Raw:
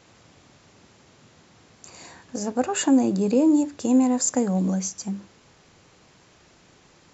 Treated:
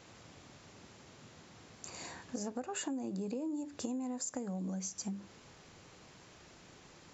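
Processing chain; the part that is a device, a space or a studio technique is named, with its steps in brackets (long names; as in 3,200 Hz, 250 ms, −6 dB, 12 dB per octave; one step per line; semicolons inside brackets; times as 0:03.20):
serial compression, leveller first (downward compressor 2.5 to 1, threshold −23 dBFS, peak gain reduction 6.5 dB; downward compressor 5 to 1, threshold −35 dBFS, peak gain reduction 13.5 dB)
level −2 dB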